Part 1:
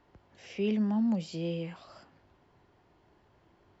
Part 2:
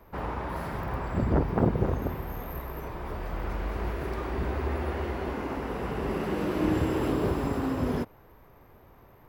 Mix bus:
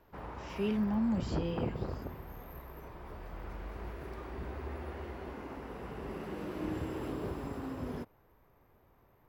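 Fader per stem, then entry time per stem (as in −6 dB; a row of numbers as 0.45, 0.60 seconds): −3.0, −11.0 decibels; 0.00, 0.00 seconds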